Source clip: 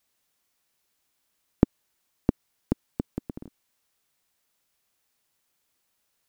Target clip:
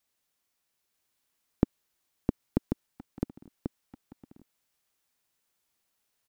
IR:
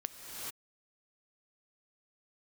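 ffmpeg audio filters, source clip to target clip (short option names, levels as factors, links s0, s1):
-filter_complex "[0:a]asettb=1/sr,asplit=3[s0][s1][s2];[s0]atrim=end=2.864[s3];[s1]atrim=start=2.86:end=3.46,asetpts=PTS-STARTPTS,afade=t=in:d=0.004:c=qsin,afade=t=out:st=0.596:d=0.004:c=qsin,aeval=exprs='(tanh(35.5*val(0)+0.45)-tanh(0.45))/35.5':c=same[s4];[s2]atrim=start=3.456[s5];[s3][s4]acrossfade=d=0.004:c1=hsin:c2=qsin[s6];[s6][s5]acrossfade=d=0.004:c1=qsin:c2=hsin,asplit=2[s7][s8];[s8]aecho=0:1:939:0.668[s9];[s7][s9]amix=inputs=2:normalize=0,volume=0.562"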